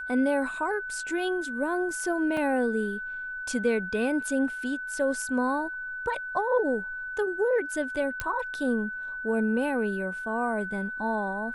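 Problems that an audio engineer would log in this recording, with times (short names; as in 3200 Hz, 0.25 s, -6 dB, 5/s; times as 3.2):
tone 1500 Hz -33 dBFS
2.37 gap 2.9 ms
8.2 pop -14 dBFS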